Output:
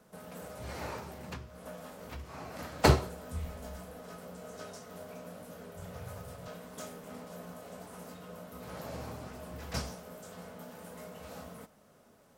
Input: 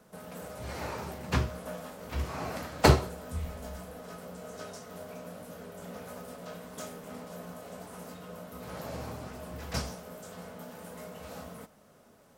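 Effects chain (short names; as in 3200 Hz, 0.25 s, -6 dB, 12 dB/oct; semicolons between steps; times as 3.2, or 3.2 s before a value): 0.98–2.59 compressor 8:1, threshold -38 dBFS, peak gain reduction 16 dB; 5.76–6.48 resonant low shelf 160 Hz +10 dB, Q 3; gain -2.5 dB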